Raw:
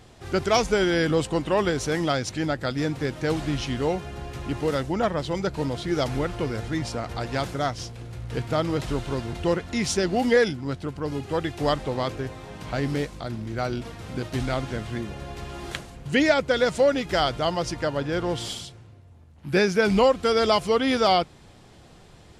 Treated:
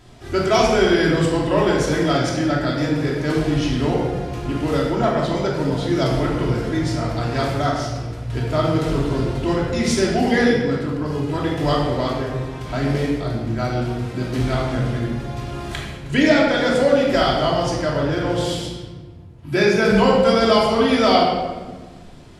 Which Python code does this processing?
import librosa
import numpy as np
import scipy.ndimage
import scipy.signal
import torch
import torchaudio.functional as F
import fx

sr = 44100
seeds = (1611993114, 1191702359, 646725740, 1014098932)

y = fx.room_shoebox(x, sr, seeds[0], volume_m3=1100.0, walls='mixed', distance_m=2.9)
y = y * 10.0 ** (-1.0 / 20.0)